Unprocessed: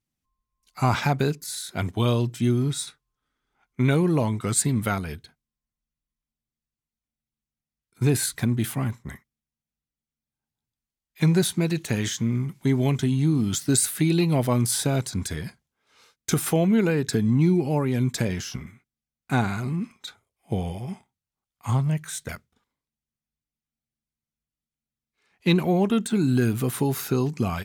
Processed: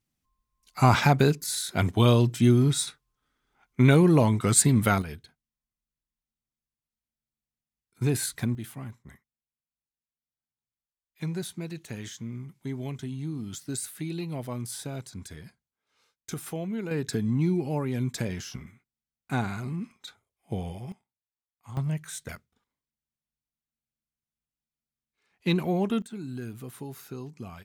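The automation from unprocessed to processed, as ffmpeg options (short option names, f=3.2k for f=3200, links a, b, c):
-af "asetnsamples=n=441:p=0,asendcmd='5.02 volume volume -4.5dB;8.55 volume volume -12.5dB;16.91 volume volume -5.5dB;20.92 volume volume -17.5dB;21.77 volume volume -5dB;26.02 volume volume -15.5dB',volume=2.5dB"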